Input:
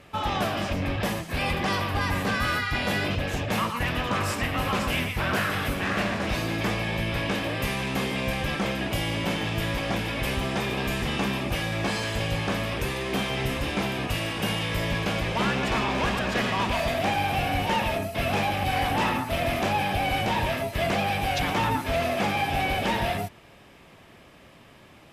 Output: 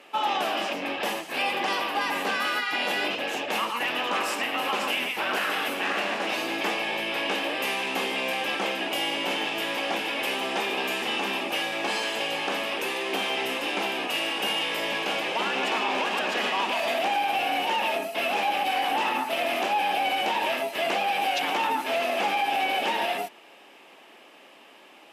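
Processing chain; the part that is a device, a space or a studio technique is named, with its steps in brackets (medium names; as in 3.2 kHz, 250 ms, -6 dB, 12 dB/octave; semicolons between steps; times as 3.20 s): laptop speaker (high-pass 280 Hz 24 dB/octave; peaking EQ 830 Hz +6 dB 0.26 oct; peaking EQ 2.8 kHz +6.5 dB 0.37 oct; peak limiter -17 dBFS, peak gain reduction 5.5 dB)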